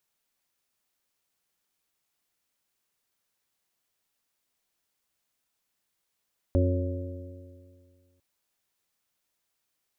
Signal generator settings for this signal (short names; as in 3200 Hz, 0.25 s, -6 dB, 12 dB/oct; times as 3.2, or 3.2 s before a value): stretched partials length 1.65 s, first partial 88 Hz, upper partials -19/-6/-9.5/-18/-7 dB, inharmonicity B 0.0028, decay 2.05 s, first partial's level -20 dB